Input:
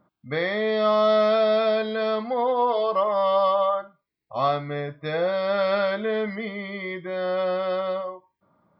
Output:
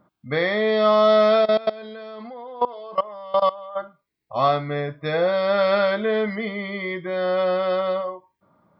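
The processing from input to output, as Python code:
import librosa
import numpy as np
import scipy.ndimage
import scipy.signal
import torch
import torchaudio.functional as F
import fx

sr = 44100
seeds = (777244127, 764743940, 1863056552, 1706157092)

y = fx.level_steps(x, sr, step_db=20, at=(1.4, 3.75), fade=0.02)
y = y * 10.0 ** (3.5 / 20.0)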